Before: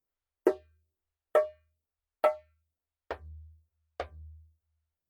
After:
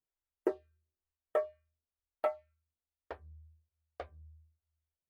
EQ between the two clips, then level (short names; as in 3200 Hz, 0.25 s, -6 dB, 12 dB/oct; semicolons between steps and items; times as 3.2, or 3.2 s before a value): high shelf 2900 Hz -6.5 dB; -6.5 dB